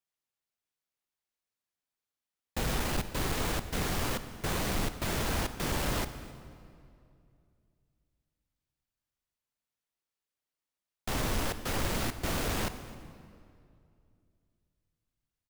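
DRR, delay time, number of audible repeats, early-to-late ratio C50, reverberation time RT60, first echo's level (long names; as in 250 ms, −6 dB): 10.5 dB, 263 ms, 1, 11.5 dB, 2.5 s, −22.0 dB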